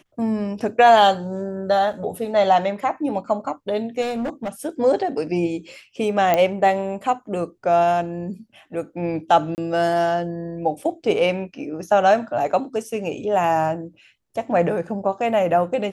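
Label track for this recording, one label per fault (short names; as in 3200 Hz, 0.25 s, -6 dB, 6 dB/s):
1.930000	1.930000	gap 4.1 ms
4.010000	4.490000	clipped -22 dBFS
6.340000	6.340000	pop -6 dBFS
9.550000	9.580000	gap 29 ms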